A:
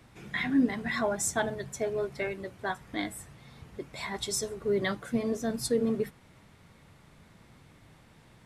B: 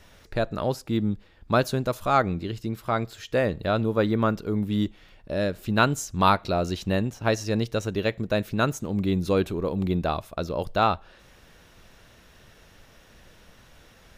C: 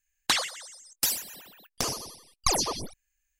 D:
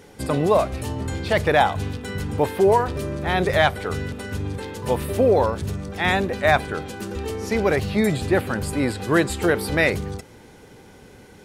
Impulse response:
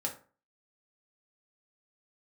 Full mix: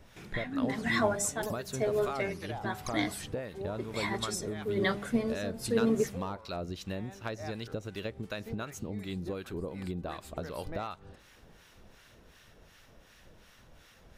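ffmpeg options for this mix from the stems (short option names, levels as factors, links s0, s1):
-filter_complex "[0:a]agate=range=0.282:threshold=0.00224:ratio=16:detection=peak,bandreject=f=67.46:t=h:w=4,bandreject=f=134.92:t=h:w=4,bandreject=f=202.38:t=h:w=4,bandreject=f=269.84:t=h:w=4,bandreject=f=337.3:t=h:w=4,bandreject=f=404.76:t=h:w=4,bandreject=f=472.22:t=h:w=4,bandreject=f=539.68:t=h:w=4,bandreject=f=607.14:t=h:w=4,bandreject=f=674.6:t=h:w=4,bandreject=f=742.06:t=h:w=4,bandreject=f=809.52:t=h:w=4,tremolo=f=1:d=0.74,volume=1.33[s0];[1:a]volume=3.76,asoftclip=hard,volume=0.266,volume=0.841[s1];[2:a]adelay=400,volume=0.251[s2];[3:a]adelay=950,volume=0.126[s3];[s1][s2][s3]amix=inputs=3:normalize=0,acrossover=split=980[s4][s5];[s4]aeval=exprs='val(0)*(1-0.7/2+0.7/2*cos(2*PI*2.7*n/s))':c=same[s6];[s5]aeval=exprs='val(0)*(1-0.7/2-0.7/2*cos(2*PI*2.7*n/s))':c=same[s7];[s6][s7]amix=inputs=2:normalize=0,acompressor=threshold=0.0224:ratio=12,volume=1[s8];[s0][s8]amix=inputs=2:normalize=0"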